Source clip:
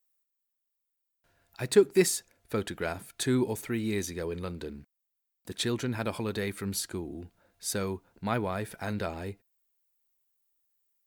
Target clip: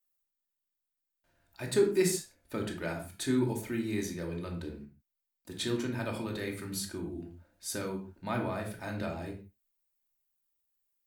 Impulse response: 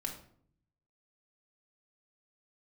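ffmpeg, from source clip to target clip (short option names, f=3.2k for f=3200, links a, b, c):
-filter_complex "[1:a]atrim=start_sample=2205,afade=t=out:st=0.24:d=0.01,atrim=end_sample=11025,asetrate=48510,aresample=44100[a];[0:a][a]afir=irnorm=-1:irlink=0,volume=-2.5dB"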